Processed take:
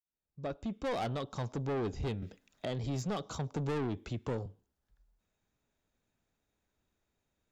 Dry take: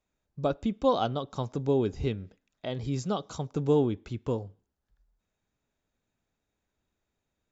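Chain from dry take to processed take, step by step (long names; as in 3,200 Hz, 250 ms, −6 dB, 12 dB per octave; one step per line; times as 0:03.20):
fade in at the beginning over 1.12 s
soft clipping −31 dBFS, distortion −6 dB
0:02.22–0:04.46: multiband upward and downward compressor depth 40%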